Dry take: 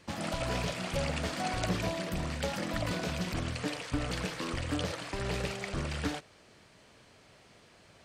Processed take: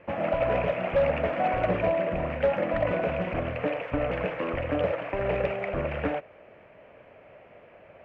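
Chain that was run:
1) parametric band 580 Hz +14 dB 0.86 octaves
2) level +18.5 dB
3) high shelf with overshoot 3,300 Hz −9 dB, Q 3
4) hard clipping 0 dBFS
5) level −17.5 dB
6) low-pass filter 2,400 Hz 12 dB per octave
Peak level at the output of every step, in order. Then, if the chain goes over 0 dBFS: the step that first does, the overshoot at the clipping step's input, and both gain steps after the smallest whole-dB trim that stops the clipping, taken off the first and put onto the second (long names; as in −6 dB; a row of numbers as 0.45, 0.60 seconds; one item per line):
−11.5, +7.0, +7.0, 0.0, −17.5, −17.0 dBFS
step 2, 7.0 dB
step 2 +11.5 dB, step 5 −10.5 dB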